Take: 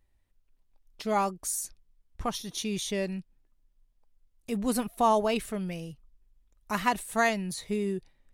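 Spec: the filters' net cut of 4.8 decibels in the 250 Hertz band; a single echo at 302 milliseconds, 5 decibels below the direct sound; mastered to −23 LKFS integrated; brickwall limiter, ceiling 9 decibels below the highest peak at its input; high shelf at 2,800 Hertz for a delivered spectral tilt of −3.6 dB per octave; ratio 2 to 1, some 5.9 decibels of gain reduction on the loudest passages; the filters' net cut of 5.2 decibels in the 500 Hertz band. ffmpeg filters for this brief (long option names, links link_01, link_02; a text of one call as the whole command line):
ffmpeg -i in.wav -af "equalizer=frequency=250:width_type=o:gain=-5,equalizer=frequency=500:width_type=o:gain=-6.5,highshelf=frequency=2800:gain=5,acompressor=threshold=-31dB:ratio=2,alimiter=level_in=1dB:limit=-24dB:level=0:latency=1,volume=-1dB,aecho=1:1:302:0.562,volume=12.5dB" out.wav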